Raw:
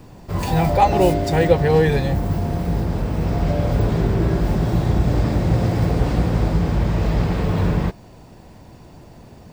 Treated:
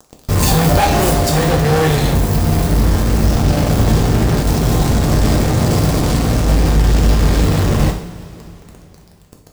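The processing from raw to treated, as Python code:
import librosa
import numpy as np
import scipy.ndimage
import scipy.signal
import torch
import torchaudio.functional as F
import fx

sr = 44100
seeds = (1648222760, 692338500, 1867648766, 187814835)

y = fx.bass_treble(x, sr, bass_db=6, treble_db=14)
y = fx.fuzz(y, sr, gain_db=23.0, gate_db=-30.0)
y = fx.rev_double_slope(y, sr, seeds[0], early_s=0.55, late_s=3.5, knee_db=-18, drr_db=1.5)
y = fx.rider(y, sr, range_db=5, speed_s=2.0)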